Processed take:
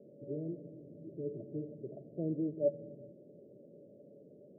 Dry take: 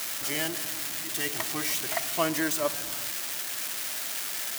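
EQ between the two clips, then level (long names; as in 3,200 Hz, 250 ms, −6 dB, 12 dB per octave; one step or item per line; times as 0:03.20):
high-pass filter 120 Hz 24 dB per octave
Chebyshev low-pass with heavy ripple 590 Hz, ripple 6 dB
+1.5 dB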